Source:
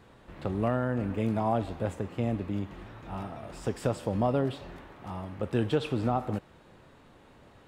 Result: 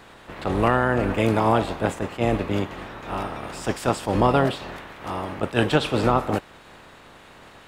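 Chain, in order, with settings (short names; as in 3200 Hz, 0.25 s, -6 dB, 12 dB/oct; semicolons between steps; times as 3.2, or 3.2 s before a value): spectral limiter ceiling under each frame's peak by 14 dB; attack slew limiter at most 320 dB/s; gain +8.5 dB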